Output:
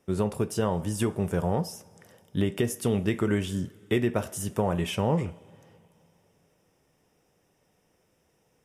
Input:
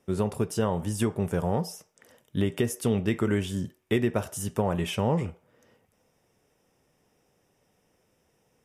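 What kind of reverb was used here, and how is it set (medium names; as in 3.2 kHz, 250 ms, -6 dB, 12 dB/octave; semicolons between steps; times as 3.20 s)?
two-slope reverb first 0.28 s, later 3.1 s, from -18 dB, DRR 15.5 dB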